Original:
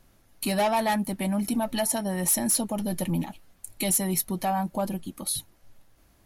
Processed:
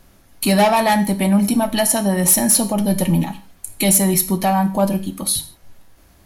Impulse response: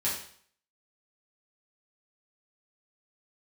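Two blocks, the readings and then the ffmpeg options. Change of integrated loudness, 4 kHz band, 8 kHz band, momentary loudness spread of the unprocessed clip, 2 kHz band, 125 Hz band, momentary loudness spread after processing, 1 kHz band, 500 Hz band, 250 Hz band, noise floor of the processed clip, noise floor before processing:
+10.0 dB, +10.0 dB, +10.0 dB, 9 LU, +10.0 dB, +11.5 dB, 8 LU, +9.0 dB, +10.0 dB, +11.0 dB, -52 dBFS, -61 dBFS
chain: -filter_complex "[0:a]asplit=2[a][b];[1:a]atrim=start_sample=2205,afade=t=out:st=0.22:d=0.01,atrim=end_sample=10143[c];[b][c]afir=irnorm=-1:irlink=0,volume=-14dB[d];[a][d]amix=inputs=2:normalize=0,volume=8dB"

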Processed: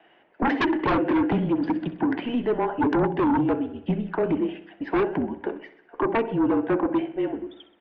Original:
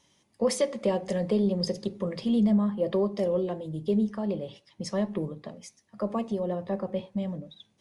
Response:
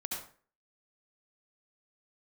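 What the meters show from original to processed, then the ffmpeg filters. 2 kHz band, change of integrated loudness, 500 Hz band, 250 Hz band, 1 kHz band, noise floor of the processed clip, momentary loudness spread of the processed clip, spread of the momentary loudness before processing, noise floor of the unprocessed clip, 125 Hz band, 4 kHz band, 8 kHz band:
+15.0 dB, +4.0 dB, +2.0 dB, +4.5 dB, +12.5 dB, -59 dBFS, 8 LU, 14 LU, -69 dBFS, +1.5 dB, -1.5 dB, under -20 dB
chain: -filter_complex "[0:a]highpass=f=350:t=q:w=0.5412,highpass=f=350:t=q:w=1.307,lowpass=f=3.3k:t=q:w=0.5176,lowpass=f=3.3k:t=q:w=0.7071,lowpass=f=3.3k:t=q:w=1.932,afreqshift=-230,acrossover=split=230 2300:gain=0.0794 1 0.126[a][b][c];[a][b][c]amix=inputs=3:normalize=0,asplit=2[d][e];[e]aecho=0:1:64|128|192|256|320|384:0.188|0.107|0.0612|0.0349|0.0199|0.0113[f];[d][f]amix=inputs=2:normalize=0,aeval=exprs='0.158*sin(PI/2*5.01*val(0)/0.158)':c=same,volume=-1.5dB"

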